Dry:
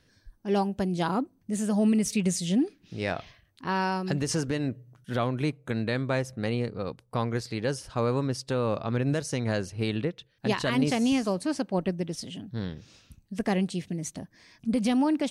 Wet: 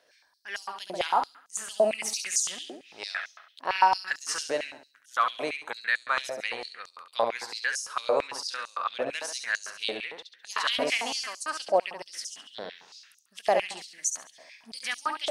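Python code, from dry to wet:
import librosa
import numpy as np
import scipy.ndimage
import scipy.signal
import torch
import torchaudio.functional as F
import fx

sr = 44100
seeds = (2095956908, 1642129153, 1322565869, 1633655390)

y = fx.room_flutter(x, sr, wall_m=11.8, rt60_s=0.61)
y = fx.filter_held_highpass(y, sr, hz=8.9, low_hz=620.0, high_hz=6400.0)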